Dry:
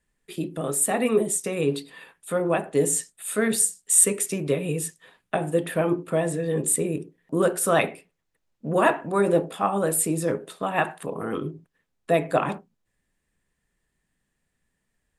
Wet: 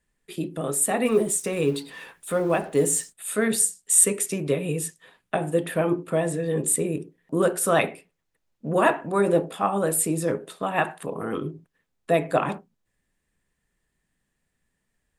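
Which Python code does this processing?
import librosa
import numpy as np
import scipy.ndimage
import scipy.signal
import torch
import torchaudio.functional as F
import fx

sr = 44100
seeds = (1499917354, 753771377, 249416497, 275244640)

y = fx.law_mismatch(x, sr, coded='mu', at=(1.04, 3.12), fade=0.02)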